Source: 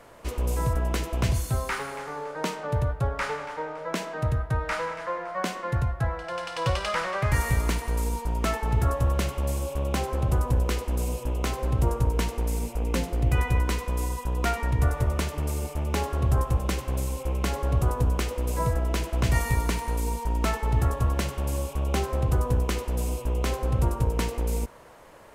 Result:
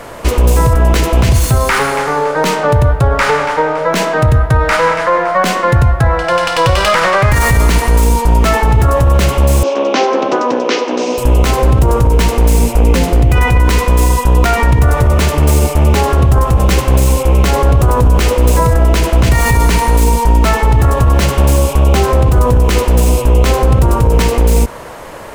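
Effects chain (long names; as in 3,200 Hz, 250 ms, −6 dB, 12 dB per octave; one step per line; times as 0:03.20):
stylus tracing distortion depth 0.049 ms
0:09.63–0:11.18: Chebyshev band-pass filter 250–6,000 Hz, order 4
boost into a limiter +21.5 dB
level −1 dB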